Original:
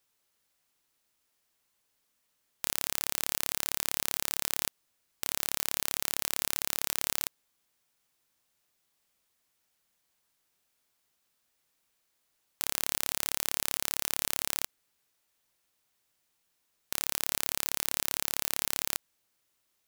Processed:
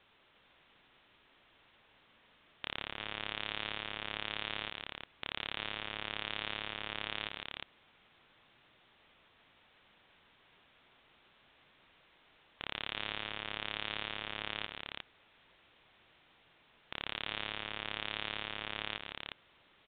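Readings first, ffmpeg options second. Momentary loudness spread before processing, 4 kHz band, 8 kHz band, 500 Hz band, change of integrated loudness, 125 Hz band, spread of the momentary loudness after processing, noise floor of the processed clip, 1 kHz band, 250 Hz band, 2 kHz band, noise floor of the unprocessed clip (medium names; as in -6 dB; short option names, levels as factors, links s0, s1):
4 LU, -2.0 dB, under -40 dB, -2.0 dB, -9.0 dB, -1.5 dB, 8 LU, -68 dBFS, -1.5 dB, -1.5 dB, 0.0 dB, -77 dBFS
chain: -af "alimiter=limit=0.2:level=0:latency=1:release=47,aresample=8000,asoftclip=type=hard:threshold=0.0119,aresample=44100,aecho=1:1:150|358:0.251|0.596,volume=6.31"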